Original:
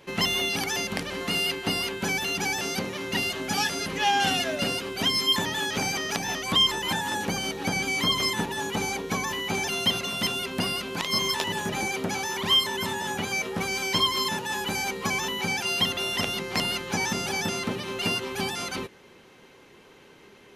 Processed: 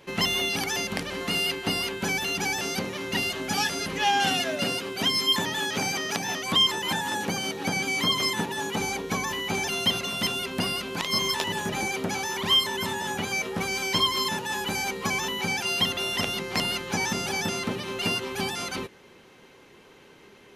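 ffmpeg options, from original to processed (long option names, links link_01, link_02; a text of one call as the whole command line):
ffmpeg -i in.wav -filter_complex "[0:a]asettb=1/sr,asplit=3[link_01][link_02][link_03];[link_01]atrim=end=4.204[link_04];[link_02]atrim=start=4.2:end=8.8,asetpts=PTS-STARTPTS,afade=type=in:duration=0.004:curve=qsin,afade=type=out:start_time=4.596:duration=0.004:curve=qsin,highpass=100[link_05];[link_03]atrim=start=8.796[link_06];[link_04][link_05]acrossfade=duration=0.004:curve1=hsin:curve2=qsin[link_07];[link_07][link_06]acrossfade=duration=0.004:curve1=qsin:curve2=hsin" out.wav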